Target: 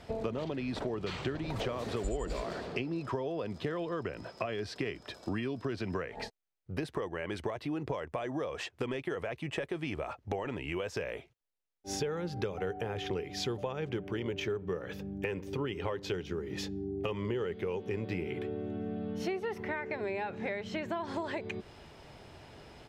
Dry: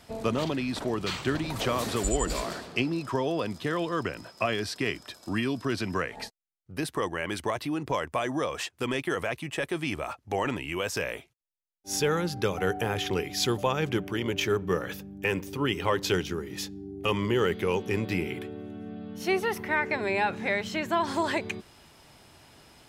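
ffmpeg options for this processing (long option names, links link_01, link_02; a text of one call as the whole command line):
ffmpeg -i in.wav -af "firequalizer=gain_entry='entry(290,0);entry(420,6);entry(1100,0);entry(1900,1);entry(11000,-13)':delay=0.05:min_phase=1,acompressor=threshold=-34dB:ratio=6,lowshelf=frequency=200:gain=6" out.wav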